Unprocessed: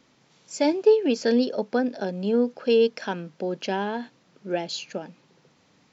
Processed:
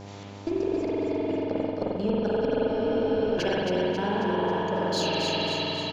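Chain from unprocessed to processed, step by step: slices played last to first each 234 ms, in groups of 2; inverted gate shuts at -16 dBFS, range -41 dB; in parallel at -5 dB: one-sided clip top -37 dBFS; on the sum: spring tank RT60 3.3 s, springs 44 ms, chirp 55 ms, DRR -6 dB; reverse; compression 6:1, threshold -30 dBFS, peak gain reduction 13.5 dB; reverse; feedback delay 271 ms, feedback 56%, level -4 dB; mains buzz 100 Hz, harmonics 10, -48 dBFS -4 dB/octave; spectral freeze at 2.70 s, 0.67 s; trim +5.5 dB

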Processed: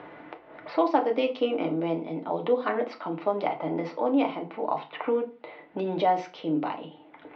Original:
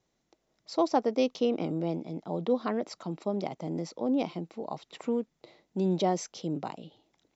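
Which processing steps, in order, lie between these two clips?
level-controlled noise filter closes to 1.8 kHz, open at -26.5 dBFS; upward compressor, threshold -41 dBFS; low-pass 3 kHz 24 dB/octave; reverberation RT60 0.30 s, pre-delay 3 ms, DRR 2 dB; 3.27–5.80 s: dynamic bell 1.1 kHz, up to +5 dB, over -53 dBFS, Q 0.78; high-pass 850 Hz 6 dB/octave; three bands compressed up and down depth 40%; trim +7.5 dB

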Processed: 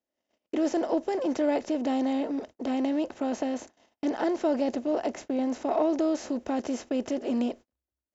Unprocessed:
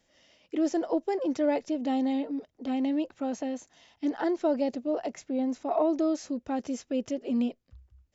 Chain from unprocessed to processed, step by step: spectral levelling over time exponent 0.6; gate -41 dBFS, range -39 dB; trim -1.5 dB

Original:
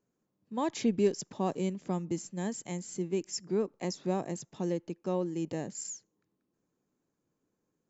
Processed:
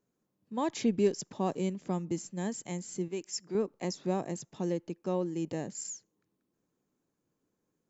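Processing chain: 3.08–3.55 s: bass shelf 390 Hz -9.5 dB

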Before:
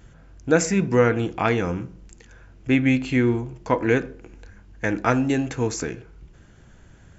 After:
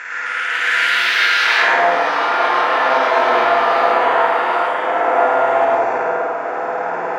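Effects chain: spectral levelling over time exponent 0.2; ladder band-pass 1.9 kHz, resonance 60%, from 1.61 s 830 Hz; flutter echo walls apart 8.9 m, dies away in 1.3 s; ever faster or slower copies 260 ms, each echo +5 st, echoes 3; reverberation RT60 0.65 s, pre-delay 100 ms, DRR -4 dB; trim +1.5 dB

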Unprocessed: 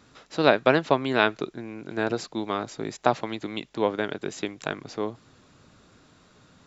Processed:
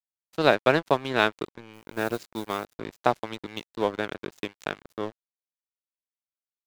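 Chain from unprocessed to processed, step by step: 1.73–2.65 s: modulation noise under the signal 18 dB; dynamic bell 260 Hz, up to -4 dB, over -42 dBFS, Q 5; crossover distortion -35 dBFS

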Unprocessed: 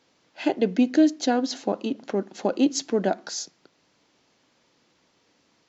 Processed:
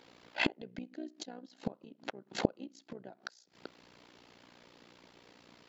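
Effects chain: inverted gate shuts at -23 dBFS, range -32 dB; peaking EQ 6.2 kHz -8.5 dB 0.58 oct; AM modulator 60 Hz, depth 75%; trim +10 dB

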